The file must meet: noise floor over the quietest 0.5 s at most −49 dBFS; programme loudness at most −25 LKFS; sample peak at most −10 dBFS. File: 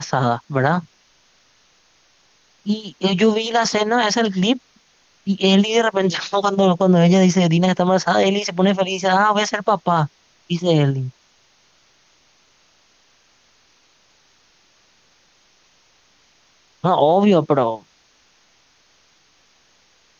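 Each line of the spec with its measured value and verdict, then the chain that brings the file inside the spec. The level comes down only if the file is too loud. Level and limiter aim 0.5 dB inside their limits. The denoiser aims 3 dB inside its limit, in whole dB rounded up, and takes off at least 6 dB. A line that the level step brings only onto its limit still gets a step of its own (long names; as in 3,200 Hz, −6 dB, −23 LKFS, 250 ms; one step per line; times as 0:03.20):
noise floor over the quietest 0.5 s −58 dBFS: in spec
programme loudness −17.5 LKFS: out of spec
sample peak −5.5 dBFS: out of spec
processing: level −8 dB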